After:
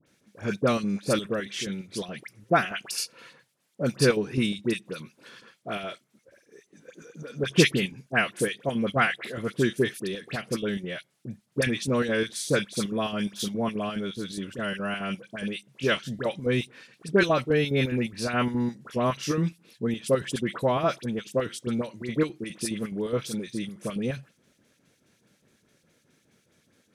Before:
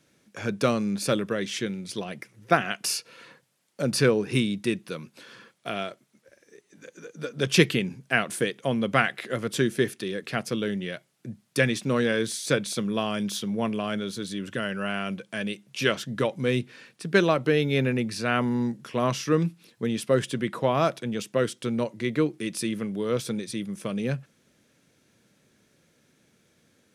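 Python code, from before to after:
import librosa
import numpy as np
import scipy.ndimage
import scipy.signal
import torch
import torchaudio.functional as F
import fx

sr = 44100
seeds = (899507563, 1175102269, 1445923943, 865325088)

y = fx.chopper(x, sr, hz=4.8, depth_pct=60, duty_pct=70)
y = fx.dispersion(y, sr, late='highs', ms=65.0, hz=1700.0)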